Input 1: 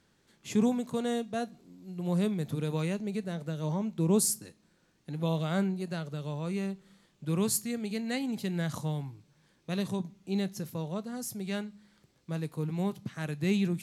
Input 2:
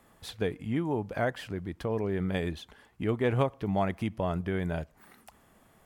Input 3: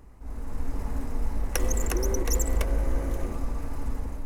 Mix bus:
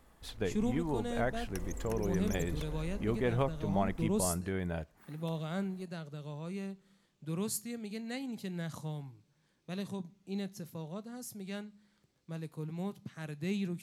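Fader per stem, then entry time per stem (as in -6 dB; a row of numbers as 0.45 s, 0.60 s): -7.0 dB, -4.5 dB, -16.0 dB; 0.00 s, 0.00 s, 0.00 s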